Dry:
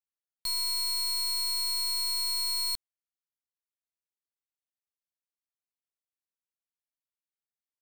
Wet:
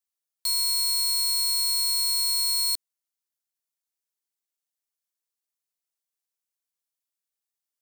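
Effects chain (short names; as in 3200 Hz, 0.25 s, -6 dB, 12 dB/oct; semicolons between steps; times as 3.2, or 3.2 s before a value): tone controls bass -8 dB, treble +8 dB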